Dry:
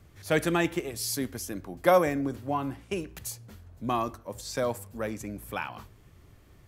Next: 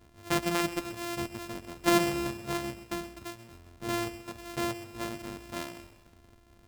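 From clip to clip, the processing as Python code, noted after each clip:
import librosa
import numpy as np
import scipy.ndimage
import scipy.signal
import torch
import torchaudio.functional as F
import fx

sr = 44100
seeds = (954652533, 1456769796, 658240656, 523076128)

y = np.r_[np.sort(x[:len(x) // 128 * 128].reshape(-1, 128), axis=1).ravel(), x[len(x) // 128 * 128:]]
y = fx.echo_crushed(y, sr, ms=131, feedback_pct=55, bits=8, wet_db=-14.0)
y = y * 10.0 ** (-3.5 / 20.0)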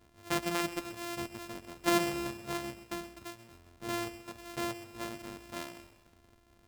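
y = fx.low_shelf(x, sr, hz=230.0, db=-4.0)
y = y * 10.0 ** (-3.0 / 20.0)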